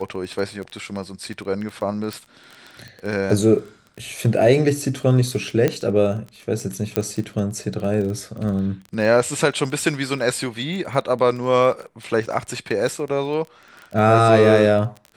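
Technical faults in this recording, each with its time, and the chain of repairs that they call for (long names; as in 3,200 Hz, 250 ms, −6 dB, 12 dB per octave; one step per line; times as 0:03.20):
surface crackle 20 per second −28 dBFS
0:02.13: click
0:05.68: click −7 dBFS
0:06.96: click −4 dBFS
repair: click removal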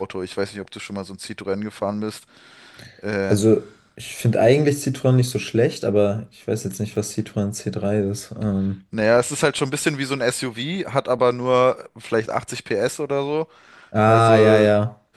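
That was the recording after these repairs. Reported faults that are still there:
0:06.96: click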